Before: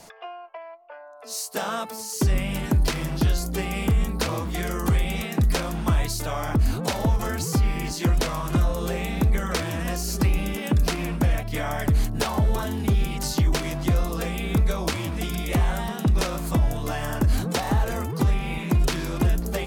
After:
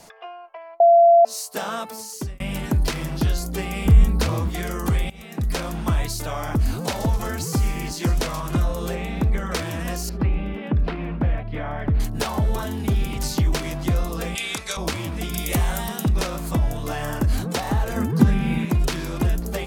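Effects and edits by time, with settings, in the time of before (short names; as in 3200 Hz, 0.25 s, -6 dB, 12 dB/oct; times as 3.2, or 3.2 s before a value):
0.8–1.25 bleep 683 Hz -9 dBFS
1.99–2.4 fade out
3.85–4.49 low shelf 150 Hz +10.5 dB
5.1–5.65 fade in, from -21.5 dB
6.39–8.41 thin delay 0.129 s, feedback 48%, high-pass 5400 Hz, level -7.5 dB
8.95–9.52 high shelf 5600 Hz -10.5 dB
10.09–12 air absorption 420 m
12.65–13.1 echo throw 0.25 s, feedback 45%, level -12 dB
14.35–14.77 weighting filter ITU-R 468
15.34–16.08 high shelf 5000 Hz +11.5 dB
16.75–17.24 flutter echo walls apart 5.8 m, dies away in 0.21 s
17.96–18.65 small resonant body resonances 200/1600 Hz, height 13 dB, ringing for 30 ms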